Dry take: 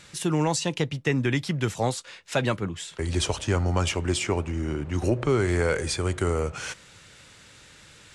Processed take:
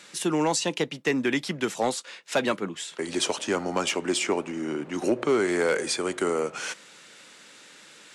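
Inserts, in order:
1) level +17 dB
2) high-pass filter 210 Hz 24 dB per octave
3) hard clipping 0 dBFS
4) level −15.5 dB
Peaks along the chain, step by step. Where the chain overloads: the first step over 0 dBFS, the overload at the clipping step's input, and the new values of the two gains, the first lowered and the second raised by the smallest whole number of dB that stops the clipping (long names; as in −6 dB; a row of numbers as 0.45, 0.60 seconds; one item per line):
+4.5, +5.0, 0.0, −15.5 dBFS
step 1, 5.0 dB
step 1 +12 dB, step 4 −10.5 dB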